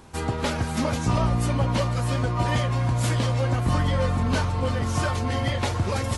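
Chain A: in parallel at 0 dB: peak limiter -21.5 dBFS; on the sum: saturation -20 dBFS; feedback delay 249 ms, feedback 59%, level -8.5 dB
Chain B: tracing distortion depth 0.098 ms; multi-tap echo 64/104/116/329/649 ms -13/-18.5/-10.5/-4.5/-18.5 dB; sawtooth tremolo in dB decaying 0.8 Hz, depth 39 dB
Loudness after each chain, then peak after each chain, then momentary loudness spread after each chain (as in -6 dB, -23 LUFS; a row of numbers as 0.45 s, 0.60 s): -24.5 LUFS, -31.0 LUFS; -15.5 dBFS, -12.0 dBFS; 1 LU, 20 LU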